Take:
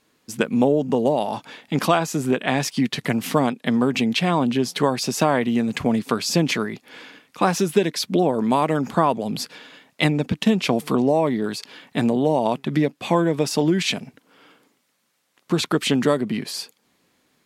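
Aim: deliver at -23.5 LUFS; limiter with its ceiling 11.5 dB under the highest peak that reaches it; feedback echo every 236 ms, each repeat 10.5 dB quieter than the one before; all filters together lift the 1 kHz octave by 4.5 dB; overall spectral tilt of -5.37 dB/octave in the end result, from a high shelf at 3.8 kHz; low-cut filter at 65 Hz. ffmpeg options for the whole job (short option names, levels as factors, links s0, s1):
-af "highpass=65,equalizer=f=1000:t=o:g=6,highshelf=f=3800:g=-5.5,alimiter=limit=0.224:level=0:latency=1,aecho=1:1:236|472|708:0.299|0.0896|0.0269,volume=1.06"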